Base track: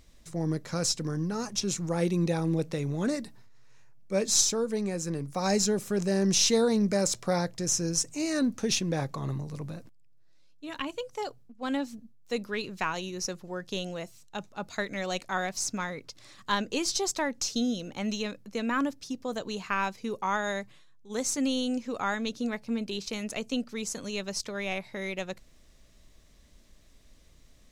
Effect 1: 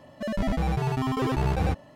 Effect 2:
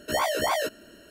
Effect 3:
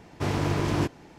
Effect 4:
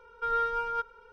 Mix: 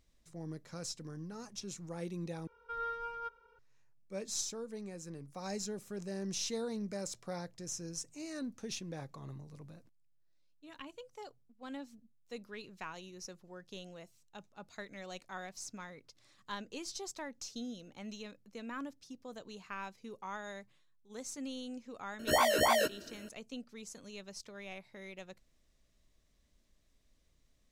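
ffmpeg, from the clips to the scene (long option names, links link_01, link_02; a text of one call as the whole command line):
ffmpeg -i bed.wav -i cue0.wav -i cue1.wav -i cue2.wav -i cue3.wav -filter_complex "[0:a]volume=-14dB,asplit=2[link_01][link_02];[link_01]atrim=end=2.474[link_03];[4:a]atrim=end=1.12,asetpts=PTS-STARTPTS,volume=-10.5dB[link_04];[link_02]atrim=start=3.586[link_05];[2:a]atrim=end=1.1,asetpts=PTS-STARTPTS,volume=-2dB,afade=type=in:duration=0.004:curve=hsin,afade=type=out:start_time=1.096:duration=0.004:curve=hsin,adelay=22190[link_06];[link_03][link_04]acrossfade=duration=0.004:curve1=hsin:curve2=hsin[link_07];[link_07][link_05]acrossfade=duration=0.004:curve1=hsin:curve2=hsin[link_08];[link_08][link_06]amix=inputs=2:normalize=0" out.wav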